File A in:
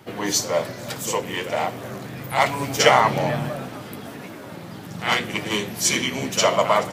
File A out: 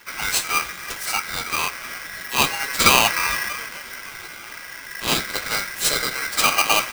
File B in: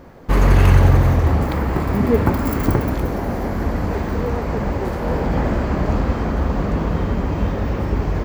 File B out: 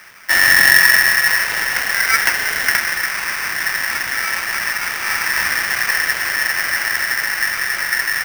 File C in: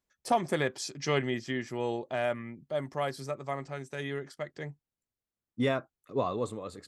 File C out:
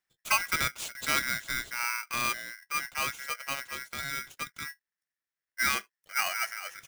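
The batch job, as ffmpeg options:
-af "aeval=exprs='val(0)*sgn(sin(2*PI*1800*n/s))':c=same"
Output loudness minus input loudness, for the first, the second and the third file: +1.5, +4.5, +2.5 LU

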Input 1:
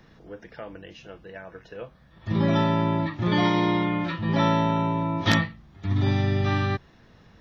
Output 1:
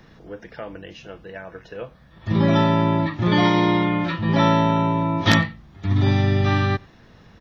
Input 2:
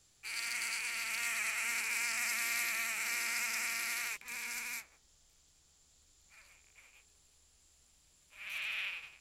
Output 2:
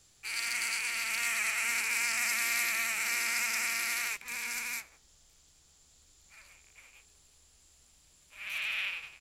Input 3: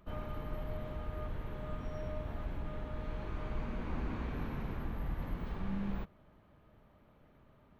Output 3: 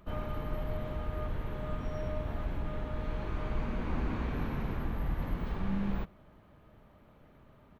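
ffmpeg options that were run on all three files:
-filter_complex "[0:a]asplit=2[a][b];[b]adelay=93.29,volume=-27dB,highshelf=f=4k:g=-2.1[c];[a][c]amix=inputs=2:normalize=0,volume=4.5dB"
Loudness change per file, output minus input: +4.5, +4.5, +4.5 LU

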